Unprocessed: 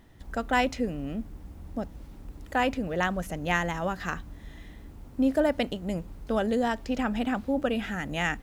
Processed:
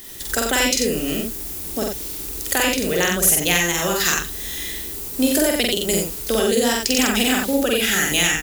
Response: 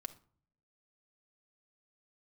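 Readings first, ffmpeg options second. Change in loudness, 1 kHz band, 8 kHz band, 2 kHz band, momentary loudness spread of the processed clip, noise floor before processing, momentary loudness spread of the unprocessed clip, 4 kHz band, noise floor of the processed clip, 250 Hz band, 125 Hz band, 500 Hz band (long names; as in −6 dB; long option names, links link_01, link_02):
+10.0 dB, +3.5 dB, +28.5 dB, +10.0 dB, 10 LU, −48 dBFS, 20 LU, +18.5 dB, −30 dBFS, +6.5 dB, +4.5 dB, +8.0 dB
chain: -filter_complex "[0:a]equalizer=frequency=400:width_type=o:width=0.56:gain=14,crystalizer=i=9.5:c=0,acrossover=split=310[link_01][link_02];[link_02]acompressor=threshold=-25dB:ratio=6[link_03];[link_01][link_03]amix=inputs=2:normalize=0,highshelf=frequency=2100:gain=11.5,aecho=1:1:46.65|90.38:0.794|0.631,volume=1dB"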